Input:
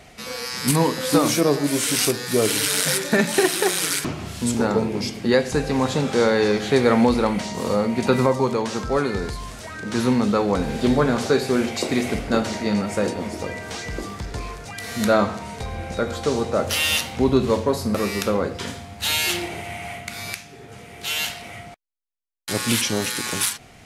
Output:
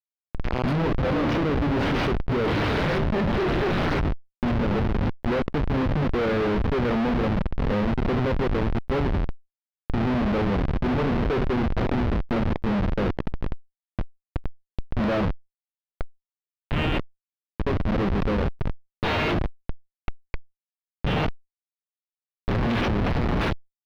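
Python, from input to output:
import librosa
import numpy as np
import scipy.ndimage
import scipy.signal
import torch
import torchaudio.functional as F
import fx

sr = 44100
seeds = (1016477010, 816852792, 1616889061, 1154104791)

y = fx.cheby1_bandpass(x, sr, low_hz=1200.0, high_hz=3300.0, order=3, at=(15.33, 17.59))
y = fx.schmitt(y, sr, flips_db=-20.5)
y = fx.air_absorb(y, sr, metres=310.0)
y = fx.env_flatten(y, sr, amount_pct=50)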